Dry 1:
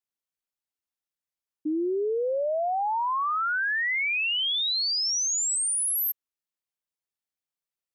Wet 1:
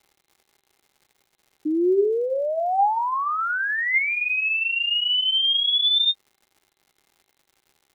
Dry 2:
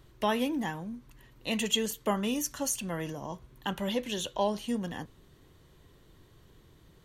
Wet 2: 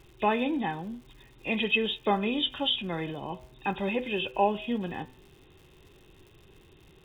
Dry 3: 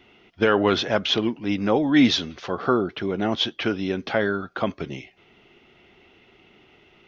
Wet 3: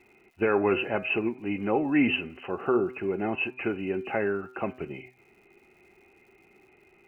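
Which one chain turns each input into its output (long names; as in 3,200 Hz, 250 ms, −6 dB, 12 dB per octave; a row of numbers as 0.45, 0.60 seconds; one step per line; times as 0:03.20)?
hearing-aid frequency compression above 2,400 Hz 4 to 1
surface crackle 180 per second −49 dBFS
hum removal 127 Hz, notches 19
hollow resonant body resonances 380/800/2,100 Hz, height 8 dB
normalise the peak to −12 dBFS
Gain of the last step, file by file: +2.0, +1.0, −7.0 decibels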